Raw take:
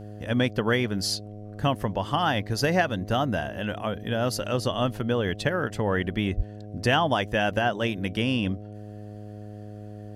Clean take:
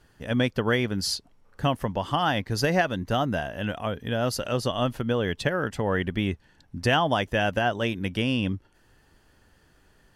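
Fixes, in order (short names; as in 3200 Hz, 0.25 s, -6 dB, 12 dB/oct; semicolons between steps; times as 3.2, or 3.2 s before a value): de-hum 104.6 Hz, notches 7; 6.36–6.48 HPF 140 Hz 24 dB/oct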